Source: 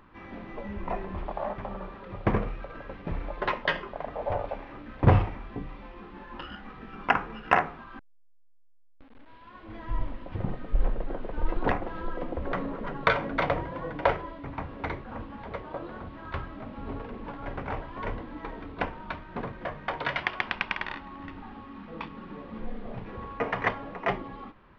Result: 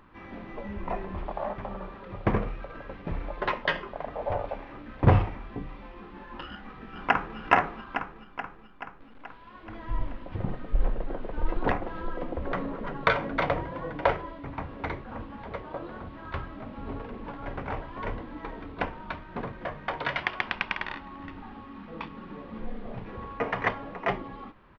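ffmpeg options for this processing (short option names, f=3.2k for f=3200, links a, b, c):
-filter_complex "[0:a]asplit=2[a][b];[b]afade=t=in:st=6.52:d=0.01,afade=t=out:st=7.38:d=0.01,aecho=0:1:430|860|1290|1720|2150|2580|3010|3440|3870:0.668344|0.401006|0.240604|0.144362|0.0866174|0.0519704|0.0311823|0.0187094|0.0112256[c];[a][c]amix=inputs=2:normalize=0"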